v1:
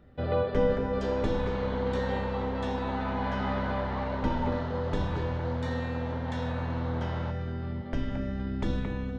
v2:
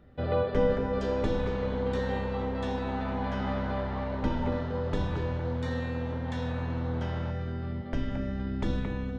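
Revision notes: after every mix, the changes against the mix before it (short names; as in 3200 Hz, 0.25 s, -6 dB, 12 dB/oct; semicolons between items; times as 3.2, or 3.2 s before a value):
second sound -4.5 dB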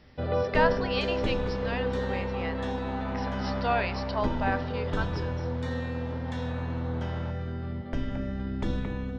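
speech: unmuted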